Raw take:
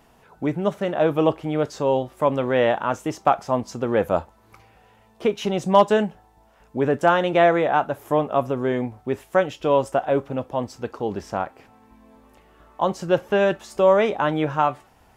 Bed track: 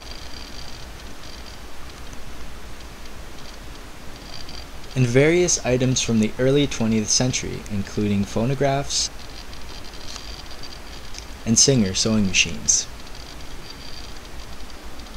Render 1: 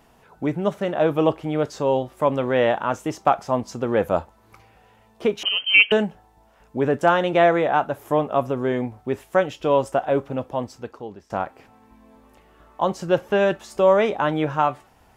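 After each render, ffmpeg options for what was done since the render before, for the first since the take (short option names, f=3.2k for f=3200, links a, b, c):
-filter_complex "[0:a]asettb=1/sr,asplit=3[a][b][c];[a]atrim=end=5.434[d];[b]atrim=start=5.43:end=5.92,asetpts=PTS-STARTPTS,afade=t=in:d=0.004:c=qsin,afade=t=out:st=0.486:d=0.004:c=qsin,lowpass=f=2.8k:t=q:w=0.5098,lowpass=f=2.8k:t=q:w=0.6013,lowpass=f=2.8k:t=q:w=0.9,lowpass=f=2.8k:t=q:w=2.563,afreqshift=-3300[e];[c]atrim=start=5.916[f];[d][e]acrossfade=d=0.004:c1=hsin:c2=qsin[g];[g][f]acrossfade=d=0.004:c1=qsin:c2=hsin,asplit=2[h][i];[h]atrim=end=11.3,asetpts=PTS-STARTPTS,afade=t=out:st=10.51:d=0.79:silence=0.0794328[j];[i]atrim=start=11.3,asetpts=PTS-STARTPTS,afade=t=in:d=0.004:c=hsin:silence=0.0794328[k];[j][k]concat=n=2:v=0:a=1"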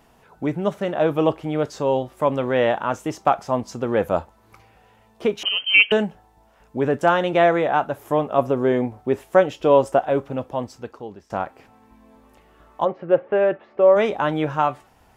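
-filter_complex "[0:a]asettb=1/sr,asplit=3[a][b][c];[a]atrim=end=8.384[d];[b]atrim=start=8.38:end=10.01,asetpts=PTS-STARTPTS,afade=t=in:d=0.004:c=qsin,afade=t=out:st=1.626:d=0.004:c=qsin,equalizer=f=460:t=o:w=2.3:g=4.5[e];[c]atrim=start=10.006[f];[d][e]acrossfade=d=0.004:c1=hsin:c2=qsin[g];[g][f]acrossfade=d=0.004:c1=qsin:c2=hsin,asplit=3[h][i][j];[h]afade=t=out:st=12.84:d=0.02[k];[i]highpass=180,equalizer=f=200:t=q:w=4:g=-6,equalizer=f=530:t=q:w=4:g=4,equalizer=f=950:t=q:w=4:g=-5,equalizer=f=1.5k:t=q:w=4:g=-4,lowpass=f=2.2k:w=0.5412,lowpass=f=2.2k:w=1.3066,afade=t=in:st=12.84:d=0.02,afade=t=out:st=13.95:d=0.02[l];[j]afade=t=in:st=13.95:d=0.02[m];[k][l][m]amix=inputs=3:normalize=0"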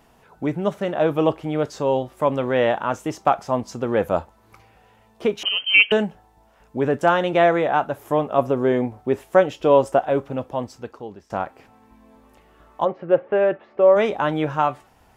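-af anull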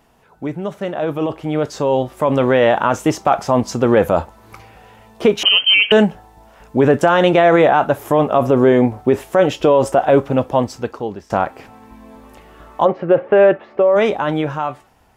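-af "alimiter=limit=-14dB:level=0:latency=1:release=26,dynaudnorm=f=530:g=7:m=12dB"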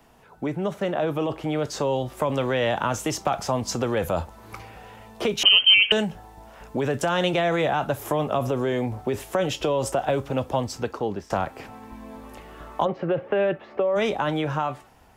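-filter_complex "[0:a]acrossover=split=160|3000[a][b][c];[b]acompressor=threshold=-21dB:ratio=6[d];[a][d][c]amix=inputs=3:normalize=0,acrossover=split=380|1400[e][f][g];[e]alimiter=limit=-23.5dB:level=0:latency=1[h];[h][f][g]amix=inputs=3:normalize=0"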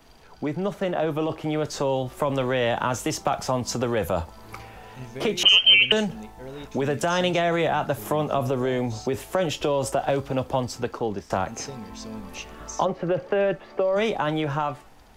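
-filter_complex "[1:a]volume=-21dB[a];[0:a][a]amix=inputs=2:normalize=0"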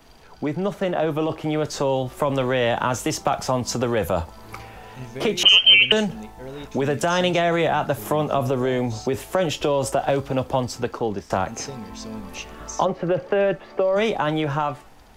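-af "volume=2.5dB"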